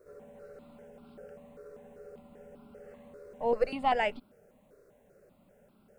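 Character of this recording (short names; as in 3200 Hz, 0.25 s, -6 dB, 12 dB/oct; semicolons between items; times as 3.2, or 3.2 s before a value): a quantiser's noise floor 12-bit, dither none; notches that jump at a steady rate 5.1 Hz 840–1800 Hz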